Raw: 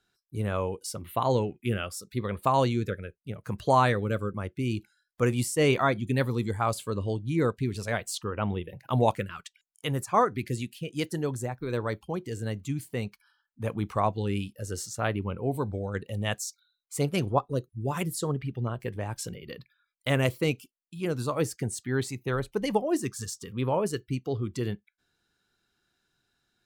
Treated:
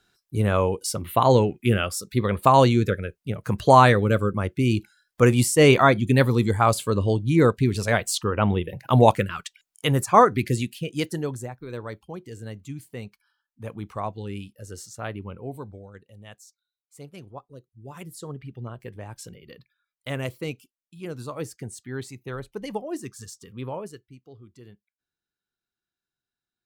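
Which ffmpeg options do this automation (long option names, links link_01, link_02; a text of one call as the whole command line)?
ffmpeg -i in.wav -af "volume=18.5dB,afade=type=out:start_time=10.42:duration=1.17:silence=0.237137,afade=type=out:start_time=15.35:duration=0.67:silence=0.281838,afade=type=in:start_time=17.64:duration=0.92:silence=0.298538,afade=type=out:start_time=23.66:duration=0.41:silence=0.251189" out.wav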